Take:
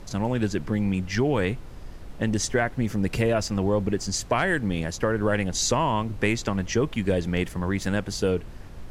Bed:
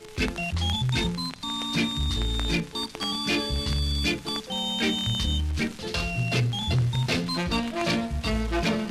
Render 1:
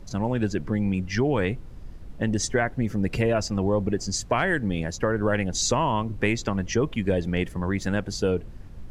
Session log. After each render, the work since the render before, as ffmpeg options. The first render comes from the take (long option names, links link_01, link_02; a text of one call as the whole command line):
ffmpeg -i in.wav -af "afftdn=noise_reduction=8:noise_floor=-40" out.wav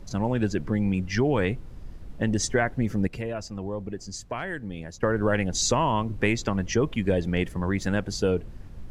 ffmpeg -i in.wav -filter_complex "[0:a]asplit=3[link_01][link_02][link_03];[link_01]atrim=end=3.072[link_04];[link_02]atrim=start=3.068:end=5.032,asetpts=PTS-STARTPTS,volume=-9dB[link_05];[link_03]atrim=start=5.028[link_06];[link_04][link_05]acrossfade=duration=0.004:curve1=hsin:curve2=hsin[link_07];[link_07][link_06]acrossfade=duration=0.004:curve1=hsin:curve2=hsin" out.wav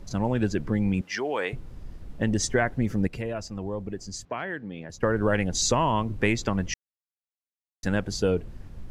ffmpeg -i in.wav -filter_complex "[0:a]asettb=1/sr,asplit=3[link_01][link_02][link_03];[link_01]atrim=end=1.014[link_04];[link_02]atrim=start=1.01:end=1.53,asetpts=PTS-STARTPTS,afade=type=in:duration=0.004:curve=qsin,afade=type=out:start_time=0.516:duration=0.004:curve=qsin,highpass=500[link_05];[link_03]atrim=start=1.526[link_06];[link_04][link_05]acrossfade=duration=0.004:curve1=hsin:curve2=qsin[link_07];[link_07][link_06]acrossfade=duration=0.004:curve1=qsin:curve2=hsin,asettb=1/sr,asplit=3[link_08][link_09][link_10];[link_08]atrim=end=4.254[link_11];[link_09]atrim=start=4.25:end=4.9,asetpts=PTS-STARTPTS,afade=type=in:duration=0.004:curve=qsin,afade=type=out:start_time=0.646:duration=0.004:curve=qsin,highpass=160,lowpass=3800[link_12];[link_10]atrim=start=4.896[link_13];[link_11][link_12]acrossfade=duration=0.004:curve1=hsin:curve2=qsin[link_14];[link_14][link_13]acrossfade=duration=0.004:curve1=qsin:curve2=hsin,asplit=3[link_15][link_16][link_17];[link_15]atrim=end=6.74,asetpts=PTS-STARTPTS,afade=type=out:start_time=6.736:duration=0.004:curve=hsin[link_18];[link_16]atrim=start=6.74:end=7.83,asetpts=PTS-STARTPTS,volume=0[link_19];[link_17]atrim=start=7.83,asetpts=PTS-STARTPTS,afade=type=in:duration=0.004:curve=hsin[link_20];[link_18][link_19][link_20]concat=n=3:v=0:a=1" out.wav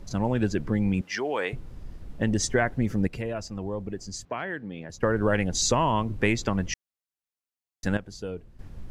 ffmpeg -i in.wav -filter_complex "[0:a]asplit=3[link_01][link_02][link_03];[link_01]atrim=end=7.972[link_04];[link_02]atrim=start=7.968:end=8.592,asetpts=PTS-STARTPTS,volume=-11dB[link_05];[link_03]atrim=start=8.588[link_06];[link_04][link_05]acrossfade=duration=0.004:curve1=hsin:curve2=hsin[link_07];[link_07][link_06]acrossfade=duration=0.004:curve1=hsin:curve2=hsin" out.wav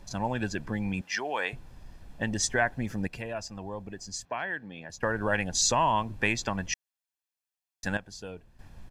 ffmpeg -i in.wav -af "lowshelf=frequency=330:gain=-10.5,aecho=1:1:1.2:0.39" out.wav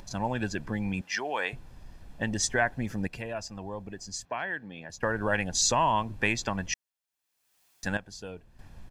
ffmpeg -i in.wav -af "acompressor=mode=upward:threshold=-45dB:ratio=2.5" out.wav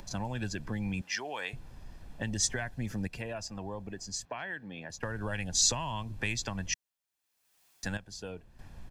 ffmpeg -i in.wav -filter_complex "[0:a]acrossover=split=160|3000[link_01][link_02][link_03];[link_02]acompressor=threshold=-36dB:ratio=6[link_04];[link_01][link_04][link_03]amix=inputs=3:normalize=0" out.wav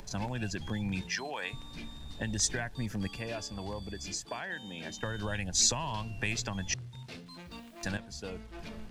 ffmpeg -i in.wav -i bed.wav -filter_complex "[1:a]volume=-20.5dB[link_01];[0:a][link_01]amix=inputs=2:normalize=0" out.wav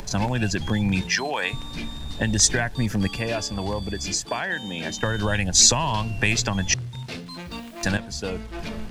ffmpeg -i in.wav -af "volume=11.5dB,alimiter=limit=-3dB:level=0:latency=1" out.wav